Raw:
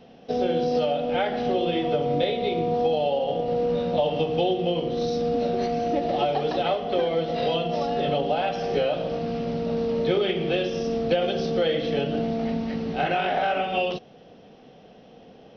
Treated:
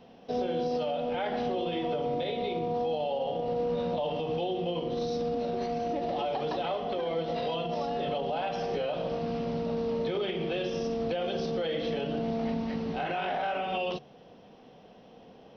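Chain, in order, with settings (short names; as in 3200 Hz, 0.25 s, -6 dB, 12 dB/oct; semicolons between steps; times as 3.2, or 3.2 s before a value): bell 990 Hz +7 dB 0.33 oct; de-hum 145 Hz, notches 3; limiter -19 dBFS, peak gain reduction 8.5 dB; gain -4 dB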